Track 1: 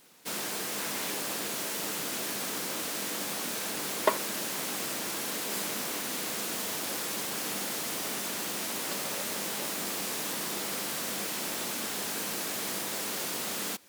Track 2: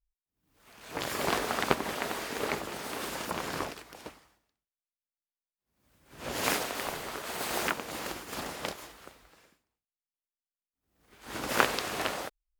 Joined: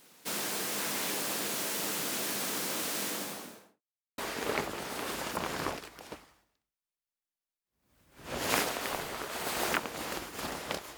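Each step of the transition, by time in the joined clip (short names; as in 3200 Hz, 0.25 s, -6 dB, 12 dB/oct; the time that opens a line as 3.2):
track 1
3.02–3.82 studio fade out
3.82–4.18 mute
4.18 switch to track 2 from 2.12 s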